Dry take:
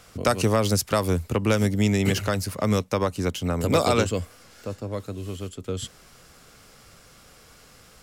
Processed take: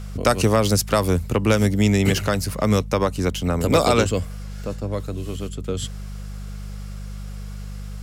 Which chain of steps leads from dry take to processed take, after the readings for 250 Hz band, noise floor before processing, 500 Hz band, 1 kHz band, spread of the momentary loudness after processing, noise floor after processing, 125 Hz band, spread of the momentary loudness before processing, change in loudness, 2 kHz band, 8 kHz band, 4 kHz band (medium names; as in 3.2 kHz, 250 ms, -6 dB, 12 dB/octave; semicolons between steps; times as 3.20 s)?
+3.5 dB, -52 dBFS, +3.5 dB, +3.5 dB, 17 LU, -33 dBFS, +4.0 dB, 13 LU, +3.5 dB, +3.5 dB, +3.5 dB, +3.5 dB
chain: mains buzz 50 Hz, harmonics 4, -36 dBFS -6 dB/octave; trim +3.5 dB